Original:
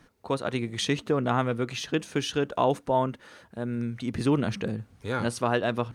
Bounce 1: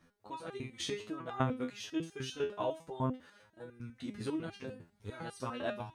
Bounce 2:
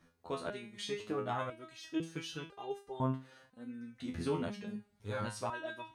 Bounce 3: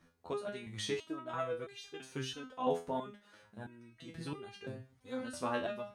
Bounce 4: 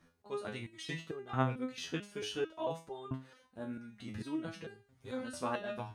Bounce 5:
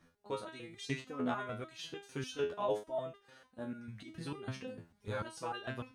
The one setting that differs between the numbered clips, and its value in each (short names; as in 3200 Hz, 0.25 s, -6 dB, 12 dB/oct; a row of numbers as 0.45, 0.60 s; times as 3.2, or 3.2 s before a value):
stepped resonator, rate: 10, 2, 3, 4.5, 6.7 Hz